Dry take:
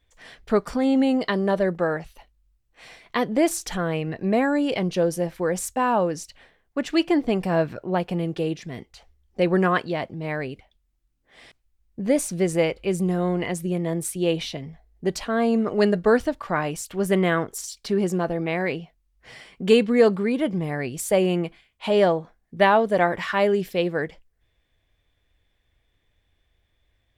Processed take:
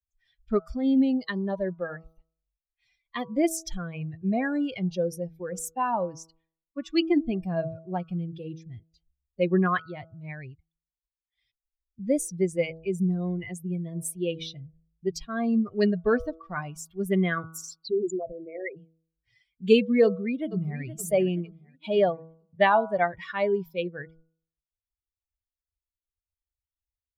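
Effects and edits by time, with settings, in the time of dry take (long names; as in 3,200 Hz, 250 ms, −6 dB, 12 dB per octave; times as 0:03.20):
0:17.79–0:18.77: spectral envelope exaggerated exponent 3
0:20.04–0:20.81: delay throw 470 ms, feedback 55%, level −7 dB
whole clip: spectral dynamics exaggerated over time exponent 2; low-shelf EQ 89 Hz +7.5 dB; hum removal 162.2 Hz, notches 9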